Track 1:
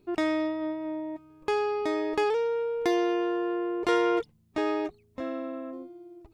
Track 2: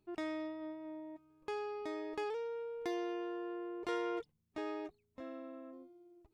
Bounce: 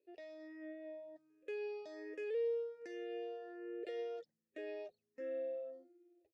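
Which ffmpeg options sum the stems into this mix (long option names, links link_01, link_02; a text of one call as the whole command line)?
ffmpeg -i stem1.wav -i stem2.wav -filter_complex "[0:a]alimiter=limit=-23.5dB:level=0:latency=1:release=116,dynaudnorm=framelen=100:gausssize=11:maxgain=6dB,asplit=2[link_01][link_02];[link_02]afreqshift=1.3[link_03];[link_01][link_03]amix=inputs=2:normalize=1,volume=-5dB[link_04];[1:a]adelay=10,volume=-7dB[link_05];[link_04][link_05]amix=inputs=2:normalize=0,asplit=3[link_06][link_07][link_08];[link_06]bandpass=frequency=530:width_type=q:width=8,volume=0dB[link_09];[link_07]bandpass=frequency=1840:width_type=q:width=8,volume=-6dB[link_10];[link_08]bandpass=frequency=2480:width_type=q:width=8,volume=-9dB[link_11];[link_09][link_10][link_11]amix=inputs=3:normalize=0,highshelf=frequency=3800:width_type=q:width=1.5:gain=9" out.wav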